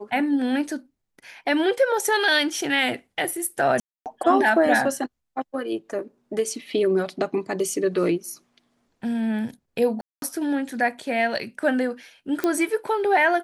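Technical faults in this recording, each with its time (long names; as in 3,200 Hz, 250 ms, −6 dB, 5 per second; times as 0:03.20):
0:03.80–0:04.06: drop-out 258 ms
0:10.01–0:10.22: drop-out 212 ms
0:12.44: click −10 dBFS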